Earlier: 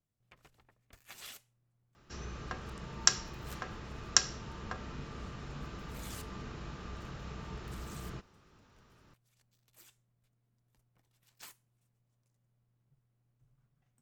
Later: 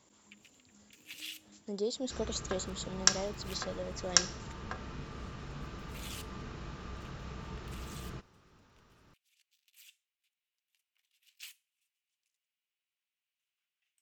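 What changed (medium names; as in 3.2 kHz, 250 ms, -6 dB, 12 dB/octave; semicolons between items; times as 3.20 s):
speech: unmuted; first sound: add resonant high-pass 2.7 kHz, resonance Q 3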